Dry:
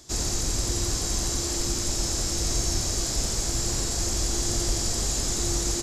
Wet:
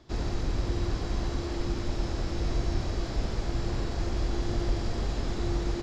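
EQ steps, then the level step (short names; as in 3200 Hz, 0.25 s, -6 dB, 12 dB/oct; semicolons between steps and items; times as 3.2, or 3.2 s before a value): air absorption 340 m; 0.0 dB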